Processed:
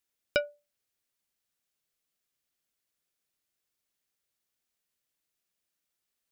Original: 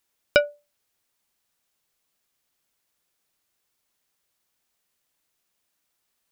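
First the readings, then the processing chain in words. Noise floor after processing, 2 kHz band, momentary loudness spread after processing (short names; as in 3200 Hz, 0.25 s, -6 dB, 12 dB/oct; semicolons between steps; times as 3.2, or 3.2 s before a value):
-85 dBFS, -9.0 dB, 7 LU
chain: bell 930 Hz -5 dB 0.83 oct; gain -8 dB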